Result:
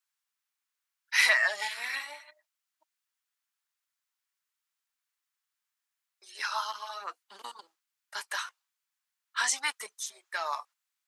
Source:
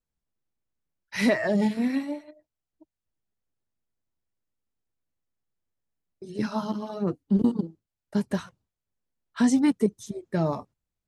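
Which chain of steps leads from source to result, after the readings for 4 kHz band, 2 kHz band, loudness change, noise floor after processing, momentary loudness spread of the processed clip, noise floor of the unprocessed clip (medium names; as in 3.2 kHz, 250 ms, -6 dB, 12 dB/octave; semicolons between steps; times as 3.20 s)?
+7.5 dB, +7.5 dB, -3.5 dB, under -85 dBFS, 20 LU, under -85 dBFS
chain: high-pass 1.1 kHz 24 dB/octave; trim +7.5 dB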